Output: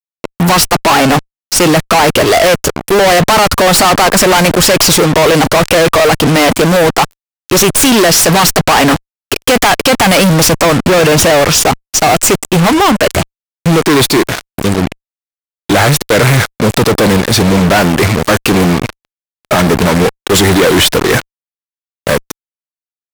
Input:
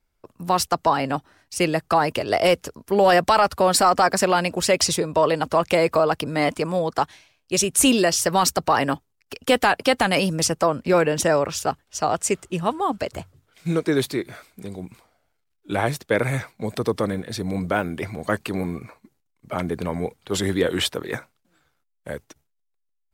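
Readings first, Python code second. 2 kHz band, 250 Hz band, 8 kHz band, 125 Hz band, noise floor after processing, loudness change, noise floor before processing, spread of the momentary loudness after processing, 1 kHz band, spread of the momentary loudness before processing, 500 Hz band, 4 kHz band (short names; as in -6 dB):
+14.5 dB, +14.0 dB, +14.0 dB, +16.5 dB, under -85 dBFS, +12.5 dB, -73 dBFS, 8 LU, +10.5 dB, 14 LU, +11.5 dB, +15.0 dB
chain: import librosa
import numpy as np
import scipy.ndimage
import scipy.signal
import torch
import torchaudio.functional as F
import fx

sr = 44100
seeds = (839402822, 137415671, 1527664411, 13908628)

y = fx.tracing_dist(x, sr, depth_ms=0.066)
y = fx.fuzz(y, sr, gain_db=43.0, gate_db=-37.0)
y = F.gain(torch.from_numpy(y), 7.0).numpy()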